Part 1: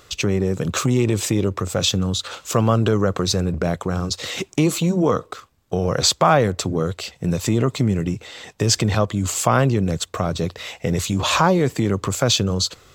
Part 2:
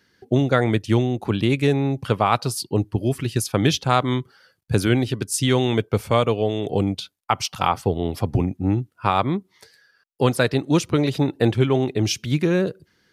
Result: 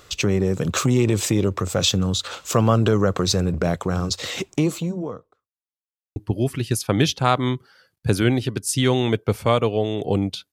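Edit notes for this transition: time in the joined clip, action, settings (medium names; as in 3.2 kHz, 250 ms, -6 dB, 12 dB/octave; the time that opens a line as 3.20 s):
part 1
4.19–5.53 s: studio fade out
5.53–6.16 s: mute
6.16 s: go over to part 2 from 2.81 s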